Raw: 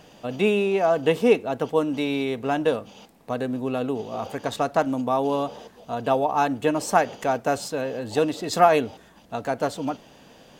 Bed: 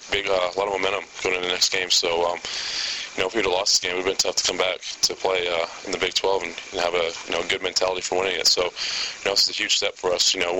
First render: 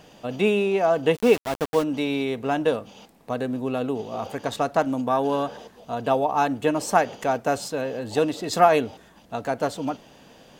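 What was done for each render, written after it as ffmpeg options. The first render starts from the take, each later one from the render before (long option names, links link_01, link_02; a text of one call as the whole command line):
ffmpeg -i in.wav -filter_complex "[0:a]asplit=3[link_01][link_02][link_03];[link_01]afade=type=out:start_time=1.15:duration=0.02[link_04];[link_02]aeval=exprs='val(0)*gte(abs(val(0)),0.0447)':channel_layout=same,afade=type=in:start_time=1.15:duration=0.02,afade=type=out:start_time=1.82:duration=0.02[link_05];[link_03]afade=type=in:start_time=1.82:duration=0.02[link_06];[link_04][link_05][link_06]amix=inputs=3:normalize=0,asettb=1/sr,asplit=3[link_07][link_08][link_09];[link_07]atrim=end=5.074[link_10];[link_08]atrim=start=5.07:end=5.57,asetpts=PTS-STARTPTS,afade=type=in:duration=0.004:curve=qsin,afade=type=out:start_time=0.496:duration=0.004:curve=qsin,equalizer=frequency=1600:width=4.3:gain=12.5[link_11];[link_09]atrim=start=5.566[link_12];[link_10][link_11]acrossfade=duration=0.004:curve1=hsin:curve2=qsin[link_13];[link_13][link_12]acrossfade=duration=0.004:curve1=qsin:curve2=hsin" out.wav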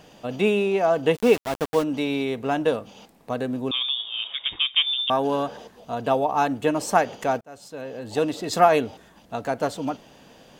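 ffmpeg -i in.wav -filter_complex "[0:a]asettb=1/sr,asplit=3[link_01][link_02][link_03];[link_01]atrim=end=3.714[link_04];[link_02]atrim=start=3.71:end=5.1,asetpts=PTS-STARTPTS,afade=type=in:duration=0.004:curve=qsin,afade=type=out:start_time=1.386:duration=0.004:curve=qsin,lowpass=frequency=3200:width_type=q:width=0.5098,lowpass=frequency=3200:width_type=q:width=0.6013,lowpass=frequency=3200:width_type=q:width=0.9,lowpass=frequency=3200:width_type=q:width=2.563,afreqshift=-3800[link_05];[link_03]atrim=start=5.096[link_06];[link_04][link_05]acrossfade=duration=0.004:curve1=hsin:curve2=qsin[link_07];[link_07][link_06]acrossfade=duration=0.004:curve1=qsin:curve2=hsin,asplit=2[link_08][link_09];[link_08]atrim=end=7.41,asetpts=PTS-STARTPTS,afade=type=out:start_time=7.406:duration=0.004:curve=hsin[link_10];[link_09]atrim=start=7.41,asetpts=PTS-STARTPTS,afade=type=in:duration=0.93[link_11];[link_10][link_11]concat=n=2:v=0:a=1" out.wav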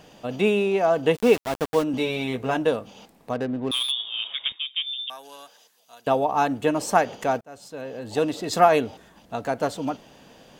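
ffmpeg -i in.wav -filter_complex "[0:a]asettb=1/sr,asplit=3[link_01][link_02][link_03];[link_01]atrim=end=1.924[link_04];[link_02]atrim=start=1.92:end=2.57,asetpts=PTS-STARTPTS,afade=type=in:duration=0.004:curve=qsin,afade=type=out:start_time=0.646:duration=0.004:curve=qsin,asplit=2[link_05][link_06];[link_06]adelay=16,volume=-3dB[link_07];[link_05][link_07]amix=inputs=2:normalize=0,atrim=end_sample=28665[link_08];[link_03]atrim=start=2.566[link_09];[link_04][link_08]acrossfade=duration=0.004:curve1=hsin:curve2=qsin[link_10];[link_10][link_09]acrossfade=duration=0.004:curve1=qsin:curve2=hsin,asplit=3[link_11][link_12][link_13];[link_11]afade=type=out:start_time=3.32:duration=0.02[link_14];[link_12]adynamicsmooth=sensitivity=6.5:basefreq=780,afade=type=in:start_time=3.32:duration=0.02,afade=type=out:start_time=3.9:duration=0.02[link_15];[link_13]afade=type=in:start_time=3.9:duration=0.02[link_16];[link_14][link_15][link_16]amix=inputs=3:normalize=0,asettb=1/sr,asplit=3[link_17][link_18][link_19];[link_17]atrim=end=4.524[link_20];[link_18]atrim=start=4.52:end=6.07,asetpts=PTS-STARTPTS,afade=type=in:duration=0.004:curve=qsin,afade=type=out:start_time=1.546:duration=0.004:curve=qsin,aderivative[link_21];[link_19]atrim=start=6.066[link_22];[link_20][link_21]acrossfade=duration=0.004:curve1=hsin:curve2=qsin[link_23];[link_23][link_22]acrossfade=duration=0.004:curve1=qsin:curve2=hsin" out.wav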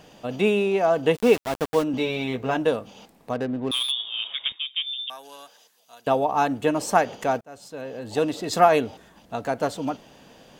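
ffmpeg -i in.wav -filter_complex "[0:a]asettb=1/sr,asplit=3[link_01][link_02][link_03];[link_01]atrim=end=1.884[link_04];[link_02]atrim=start=1.88:end=2.59,asetpts=PTS-STARTPTS,afade=type=in:duration=0.004:curve=qsin,afade=type=out:start_time=0.706:duration=0.004:curve=qsin,equalizer=frequency=10000:width_type=o:width=0.63:gain=-9[link_05];[link_03]atrim=start=2.586[link_06];[link_04][link_05]acrossfade=duration=0.004:curve1=hsin:curve2=qsin[link_07];[link_07][link_06]acrossfade=duration=0.004:curve1=qsin:curve2=hsin" out.wav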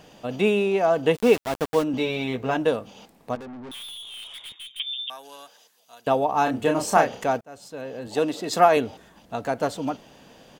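ffmpeg -i in.wav -filter_complex "[0:a]asettb=1/sr,asplit=3[link_01][link_02][link_03];[link_01]atrim=end=3.354[link_04];[link_02]atrim=start=3.35:end=4.8,asetpts=PTS-STARTPTS,afade=type=in:duration=0.004:curve=qsin,afade=type=out:start_time=1.446:duration=0.004:curve=qsin,aeval=exprs='(tanh(70.8*val(0)+0.1)-tanh(0.1))/70.8':channel_layout=same[link_05];[link_03]atrim=start=4.796[link_06];[link_04][link_05]acrossfade=duration=0.004:curve1=hsin:curve2=qsin[link_07];[link_07][link_06]acrossfade=duration=0.004:curve1=qsin:curve2=hsin,asplit=3[link_08][link_09][link_10];[link_08]afade=type=out:start_time=6.46:duration=0.02[link_11];[link_09]asplit=2[link_12][link_13];[link_13]adelay=31,volume=-4dB[link_14];[link_12][link_14]amix=inputs=2:normalize=0,afade=type=in:start_time=6.46:duration=0.02,afade=type=out:start_time=7.2:duration=0.02[link_15];[link_10]afade=type=in:start_time=7.2:duration=0.02[link_16];[link_11][link_15][link_16]amix=inputs=3:normalize=0,asettb=1/sr,asplit=3[link_17][link_18][link_19];[link_17]atrim=end=8.074[link_20];[link_18]atrim=start=8.07:end=8.77,asetpts=PTS-STARTPTS,afade=type=in:duration=0.004:curve=qsin,afade=type=out:start_time=0.696:duration=0.004:curve=qsin,highpass=160[link_21];[link_19]atrim=start=8.766[link_22];[link_20][link_21]acrossfade=duration=0.004:curve1=hsin:curve2=qsin[link_23];[link_23][link_22]acrossfade=duration=0.004:curve1=qsin:curve2=hsin" out.wav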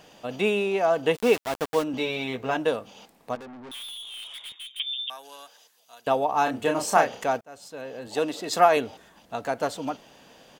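ffmpeg -i in.wav -af "lowshelf=frequency=370:gain=-7" out.wav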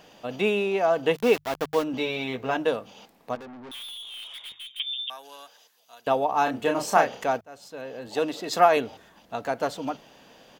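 ffmpeg -i in.wav -af "equalizer=frequency=8700:width_type=o:width=0.68:gain=-5.5,bandreject=frequency=50:width_type=h:width=6,bandreject=frequency=100:width_type=h:width=6,bandreject=frequency=150:width_type=h:width=6" out.wav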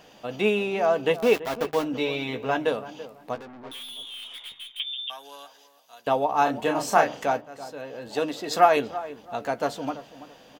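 ffmpeg -i in.wav -filter_complex "[0:a]asplit=2[link_01][link_02];[link_02]adelay=14,volume=-10.5dB[link_03];[link_01][link_03]amix=inputs=2:normalize=0,asplit=2[link_04][link_05];[link_05]adelay=333,lowpass=frequency=1400:poles=1,volume=-14dB,asplit=2[link_06][link_07];[link_07]adelay=333,lowpass=frequency=1400:poles=1,volume=0.27,asplit=2[link_08][link_09];[link_09]adelay=333,lowpass=frequency=1400:poles=1,volume=0.27[link_10];[link_04][link_06][link_08][link_10]amix=inputs=4:normalize=0" out.wav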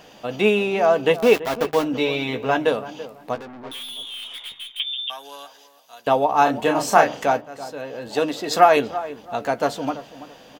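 ffmpeg -i in.wav -af "volume=5dB,alimiter=limit=-1dB:level=0:latency=1" out.wav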